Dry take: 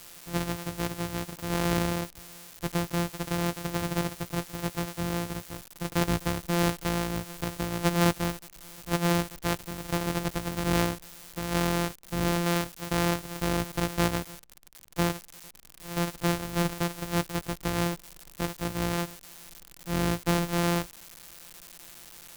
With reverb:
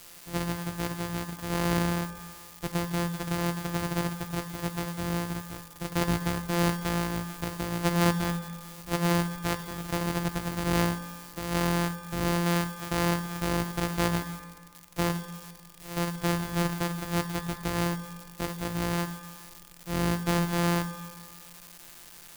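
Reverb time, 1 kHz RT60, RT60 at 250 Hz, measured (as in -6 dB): 1.7 s, 1.7 s, 1.7 s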